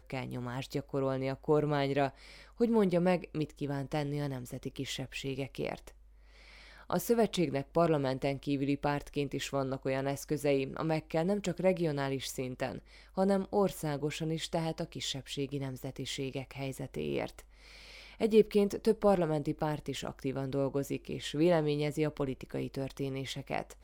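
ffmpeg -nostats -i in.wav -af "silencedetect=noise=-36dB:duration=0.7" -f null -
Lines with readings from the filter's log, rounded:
silence_start: 5.88
silence_end: 6.90 | silence_duration: 1.03
silence_start: 17.39
silence_end: 18.21 | silence_duration: 0.82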